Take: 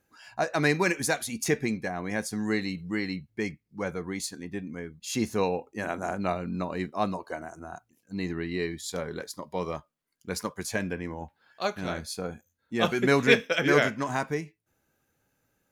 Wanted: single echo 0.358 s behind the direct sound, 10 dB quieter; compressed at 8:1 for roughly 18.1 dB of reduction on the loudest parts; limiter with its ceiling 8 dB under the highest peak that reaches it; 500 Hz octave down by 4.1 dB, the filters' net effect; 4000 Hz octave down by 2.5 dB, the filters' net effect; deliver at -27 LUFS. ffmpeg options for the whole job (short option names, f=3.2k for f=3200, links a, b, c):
-af "equalizer=f=500:t=o:g=-5,equalizer=f=4k:t=o:g=-3,acompressor=threshold=-35dB:ratio=8,alimiter=level_in=6dB:limit=-24dB:level=0:latency=1,volume=-6dB,aecho=1:1:358:0.316,volume=14.5dB"